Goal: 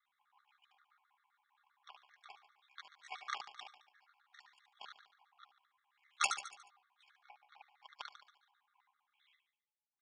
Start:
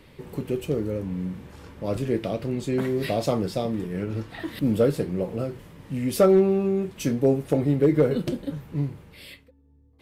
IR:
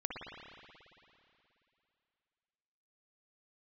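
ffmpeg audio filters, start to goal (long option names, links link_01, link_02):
-af "aeval=exprs='val(0)*sin(2*PI*34*n/s)':channel_layout=same,afftfilt=real='re*between(b*sr/4096,700,4100)':imag='im*between(b*sr/4096,700,4100)':win_size=4096:overlap=0.75,highshelf=frequency=1800:width_type=q:width=1.5:gain=-10.5,aeval=exprs='0.133*(cos(1*acos(clip(val(0)/0.133,-1,1)))-cos(1*PI/2))+0.0473*(cos(2*acos(clip(val(0)/0.133,-1,1)))-cos(2*PI/2))+0.0168*(cos(7*acos(clip(val(0)/0.133,-1,1)))-cos(7*PI/2))+0.00376*(cos(8*acos(clip(val(0)/0.133,-1,1)))-cos(8*PI/2))':channel_layout=same,aderivative,aecho=1:1:4.9:0.56,aecho=1:1:72|144|216|288|360|432:0.376|0.192|0.0978|0.0499|0.0254|0.013,afftfilt=real='re*gt(sin(2*PI*7.6*pts/sr)*(1-2*mod(floor(b*sr/1024/1100),2)),0)':imag='im*gt(sin(2*PI*7.6*pts/sr)*(1-2*mod(floor(b*sr/1024/1100),2)),0)':win_size=1024:overlap=0.75,volume=15dB"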